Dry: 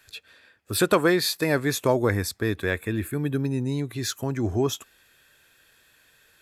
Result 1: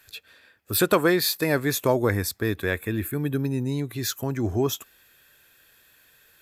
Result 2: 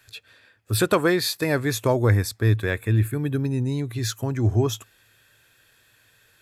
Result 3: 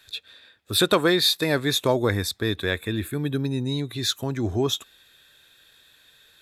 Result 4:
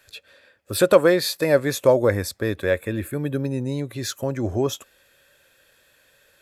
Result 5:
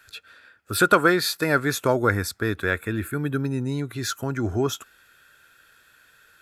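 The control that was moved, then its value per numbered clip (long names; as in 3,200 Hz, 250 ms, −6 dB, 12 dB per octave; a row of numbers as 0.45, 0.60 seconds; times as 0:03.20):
parametric band, centre frequency: 14,000, 110, 3,700, 550, 1,400 Hertz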